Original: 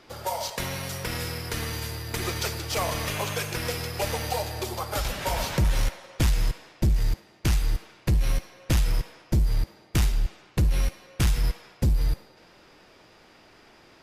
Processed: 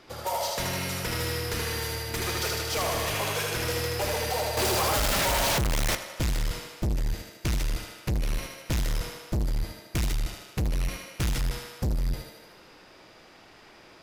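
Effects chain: thinning echo 77 ms, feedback 64%, high-pass 210 Hz, level -3.5 dB; 4.57–5.95 s: waveshaping leveller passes 5; hard clipper -24 dBFS, distortion -7 dB

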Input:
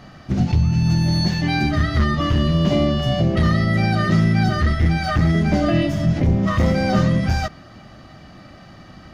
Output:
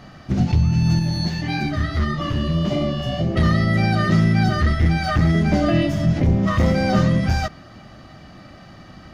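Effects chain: 0.99–3.36 s: flange 1.6 Hz, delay 4.7 ms, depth 8.2 ms, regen -37%

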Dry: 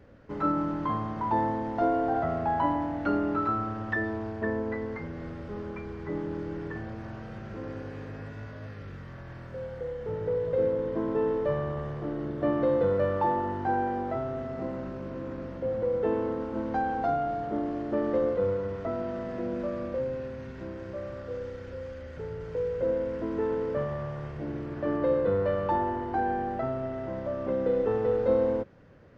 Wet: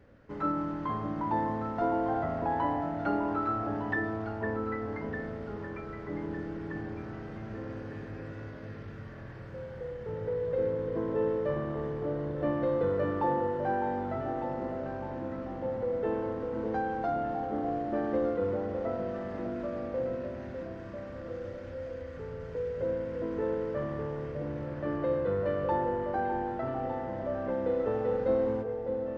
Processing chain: peaking EQ 1.8 kHz +2 dB; on a send: echo whose repeats swap between lows and highs 603 ms, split 870 Hz, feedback 61%, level -5 dB; on the sum: trim -4 dB

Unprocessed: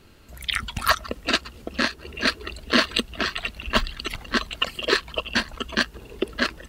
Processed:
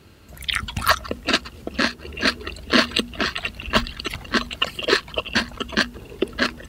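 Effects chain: high-pass 68 Hz; bass shelf 170 Hz +6.5 dB; hum notches 60/120/180/240 Hz; trim +2 dB

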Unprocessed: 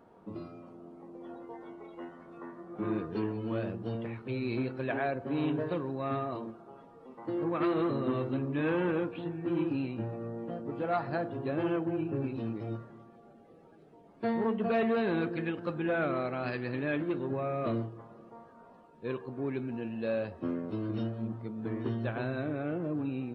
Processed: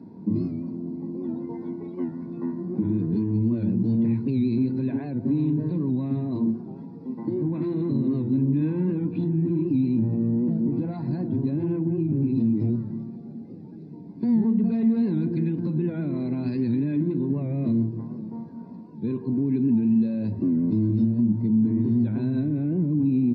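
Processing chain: compression 6:1, threshold -36 dBFS, peak gain reduction 11.5 dB; reverberation RT60 0.35 s, pre-delay 3 ms, DRR 17.5 dB; peak limiter -23.5 dBFS, peak gain reduction 6.5 dB; high-pass 100 Hz; resonant low shelf 360 Hz +12 dB, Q 3; comb 2 ms, depth 44%; warped record 78 rpm, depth 100 cents; trim -4 dB

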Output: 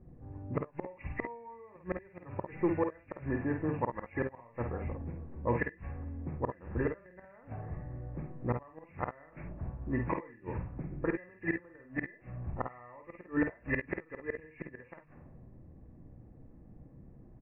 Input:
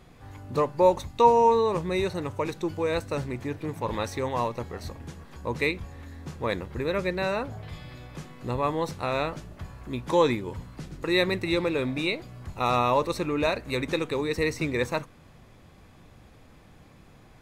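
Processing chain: knee-point frequency compression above 1.6 kHz 4:1; hum notches 50/100/150/200 Hz; level-controlled noise filter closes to 330 Hz, open at -21 dBFS; band-stop 420 Hz, Q 13; inverted gate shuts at -19 dBFS, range -30 dB; early reflections 51 ms -6 dB, 66 ms -14 dB

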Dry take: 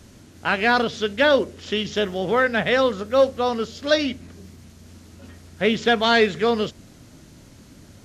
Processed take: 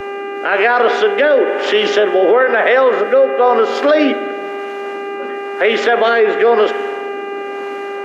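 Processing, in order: high-pass 260 Hz 24 dB/octave; three-band isolator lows -22 dB, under 330 Hz, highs -22 dB, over 2.2 kHz; compression 3:1, threshold -30 dBFS, peak gain reduction 13 dB; spring tank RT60 2.6 s, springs 52 ms, chirp 80 ms, DRR 13 dB; rotary cabinet horn 1 Hz; mains buzz 400 Hz, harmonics 7, -49 dBFS -6 dB/octave; loudness maximiser +31 dB; three bands expanded up and down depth 40%; trim -3 dB

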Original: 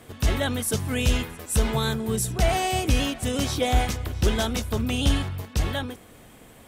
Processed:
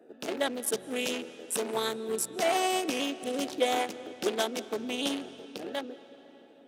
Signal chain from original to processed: local Wiener filter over 41 samples; high-pass 300 Hz 24 dB/octave; reverberation RT60 3.9 s, pre-delay 116 ms, DRR 15.5 dB

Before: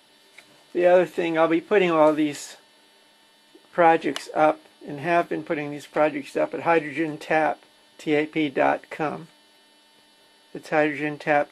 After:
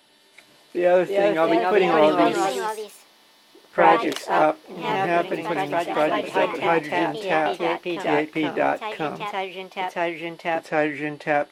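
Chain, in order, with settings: ever faster or slower copies 411 ms, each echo +2 st, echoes 3; trim -1 dB

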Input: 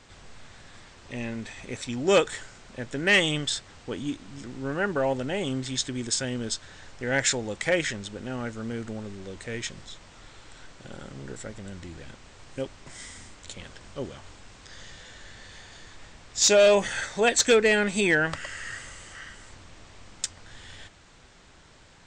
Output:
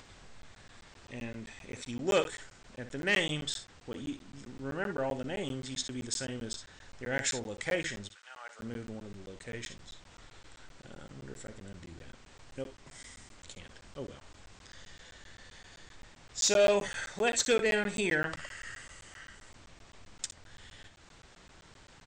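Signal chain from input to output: upward compressor, threshold -41 dBFS; 8.07–8.59 s: high-pass 1.4 kHz -> 570 Hz 24 dB/octave; early reflections 59 ms -11.5 dB, 71 ms -17.5 dB; crackling interface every 0.13 s, samples 512, zero, from 0.42 s; trim -7.5 dB

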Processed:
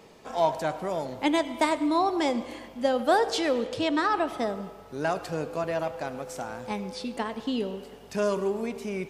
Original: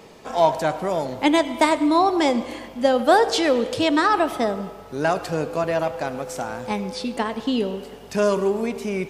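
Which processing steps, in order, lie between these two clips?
3.65–4.38 s: treble shelf 11 kHz -12 dB; trim -6.5 dB

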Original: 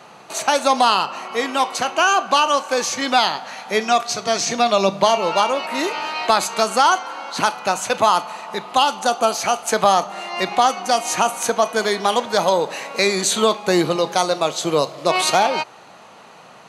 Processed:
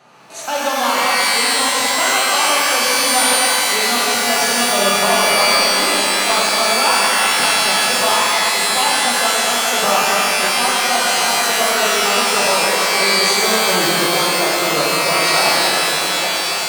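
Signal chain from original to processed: backward echo that repeats 586 ms, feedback 73%, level -10 dB; pitch-shifted reverb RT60 3.2 s, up +12 st, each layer -2 dB, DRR -6.5 dB; trim -8 dB

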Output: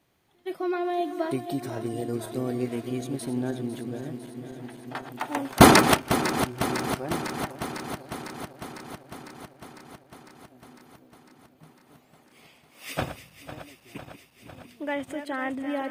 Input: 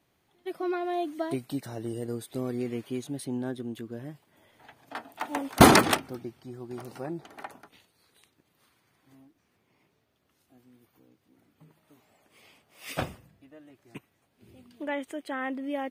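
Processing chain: backward echo that repeats 251 ms, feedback 84%, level -11 dB; trim +2 dB

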